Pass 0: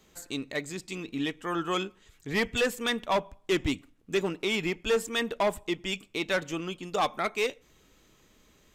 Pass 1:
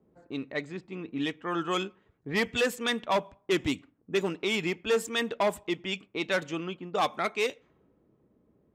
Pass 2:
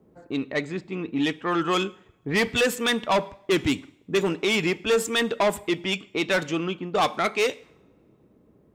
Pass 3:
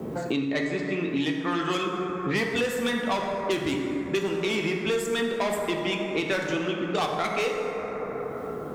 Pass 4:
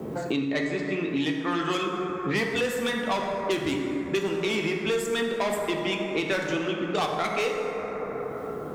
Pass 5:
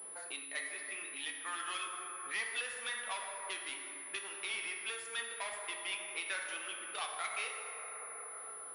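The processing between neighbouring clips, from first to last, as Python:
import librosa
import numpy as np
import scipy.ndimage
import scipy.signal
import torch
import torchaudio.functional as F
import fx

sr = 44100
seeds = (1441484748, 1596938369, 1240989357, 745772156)

y1 = scipy.signal.sosfilt(scipy.signal.butter(2, 94.0, 'highpass', fs=sr, output='sos'), x)
y1 = fx.env_lowpass(y1, sr, base_hz=510.0, full_db=-24.5)
y2 = fx.rev_double_slope(y1, sr, seeds[0], early_s=0.62, late_s=2.4, knee_db=-28, drr_db=19.5)
y2 = 10.0 ** (-24.0 / 20.0) * np.tanh(y2 / 10.0 ** (-24.0 / 20.0))
y2 = y2 * librosa.db_to_amplitude(8.0)
y3 = fx.rev_plate(y2, sr, seeds[1], rt60_s=2.3, hf_ratio=0.35, predelay_ms=0, drr_db=0.5)
y3 = fx.band_squash(y3, sr, depth_pct=100)
y3 = y3 * librosa.db_to_amplitude(-6.0)
y4 = fx.hum_notches(y3, sr, base_hz=60, count=4)
y5 = scipy.signal.sosfilt(scipy.signal.butter(2, 1300.0, 'highpass', fs=sr, output='sos'), y4)
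y5 = fx.pwm(y5, sr, carrier_hz=10000.0)
y5 = y5 * librosa.db_to_amplitude(-7.0)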